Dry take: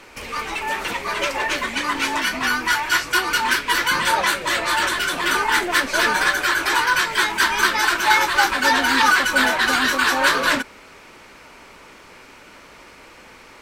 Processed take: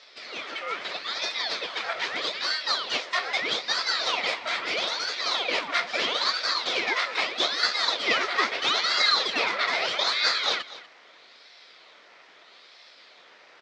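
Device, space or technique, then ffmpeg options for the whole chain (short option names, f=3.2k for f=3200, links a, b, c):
voice changer toy: -filter_complex "[0:a]asettb=1/sr,asplit=3[a][b][c];[a]atrim=end=9.144[d];[b]atrim=start=9.14:end=9.78,asetpts=PTS-STARTPTS,afade=t=in:d=0.004:c=qsin,afade=t=out:st=0.636:d=0.004:c=qsin,lowpass=9.2k[e];[c]atrim=start=9.776[f];[d][e]acrossfade=d=0.004:c1=hsin:c2=qsin[g];[g][f]acrossfade=d=0.004:c1=qsin:c2=hsin,aeval=exprs='val(0)*sin(2*PI*1700*n/s+1700*0.8/0.78*sin(2*PI*0.78*n/s))':c=same,highpass=580,equalizer=f=830:t=q:w=4:g=-8,equalizer=f=1.6k:t=q:w=4:g=-6,equalizer=f=2.8k:t=q:w=4:g=-8,lowpass=f=4.8k:w=0.5412,lowpass=f=4.8k:w=1.3066,equalizer=f=1.1k:w=4.7:g=-4,aecho=1:1:243:0.141"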